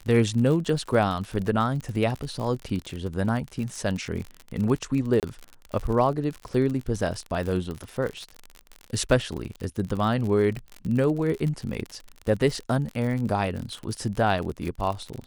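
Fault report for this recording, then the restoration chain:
crackle 49 per s -30 dBFS
5.20–5.23 s: dropout 28 ms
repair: de-click; interpolate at 5.20 s, 28 ms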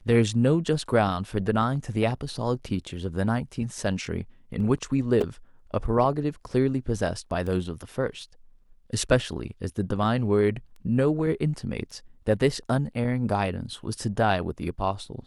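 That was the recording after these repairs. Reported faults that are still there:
nothing left

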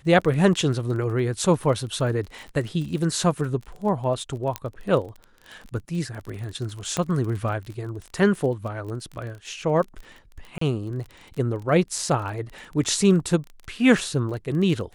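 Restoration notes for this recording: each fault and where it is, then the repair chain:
crackle 26 per s -32 dBFS
4.56 s: pop -11 dBFS
6.97 s: pop -11 dBFS
10.58–10.61 s: dropout 34 ms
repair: de-click; interpolate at 10.58 s, 34 ms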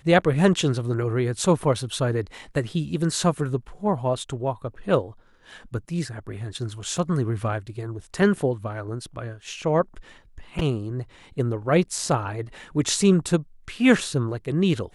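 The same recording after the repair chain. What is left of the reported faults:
6.97 s: pop

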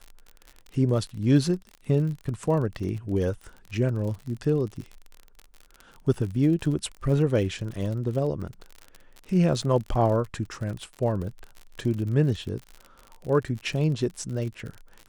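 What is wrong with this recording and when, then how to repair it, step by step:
crackle 49 per s -33 dBFS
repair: de-click

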